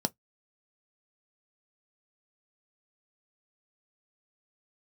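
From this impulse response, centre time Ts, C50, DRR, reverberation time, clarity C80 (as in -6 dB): 3 ms, 34.5 dB, 9.0 dB, not exponential, 54.5 dB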